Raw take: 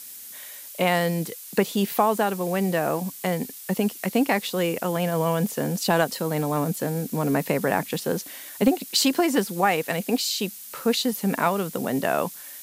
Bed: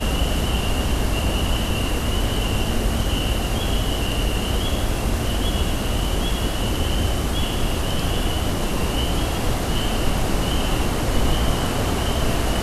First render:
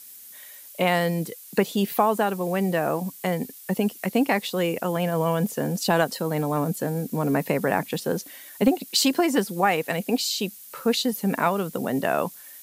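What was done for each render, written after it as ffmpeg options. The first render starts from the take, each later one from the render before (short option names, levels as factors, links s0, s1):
-af "afftdn=nr=6:nf=-41"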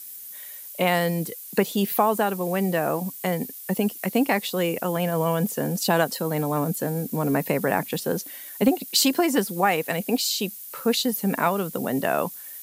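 -af "highpass=44,highshelf=f=11000:g=8.5"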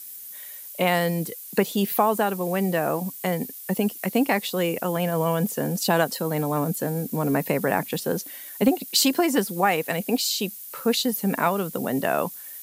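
-af anull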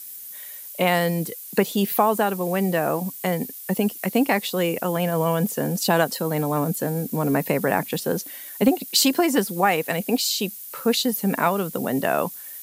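-af "volume=1.19"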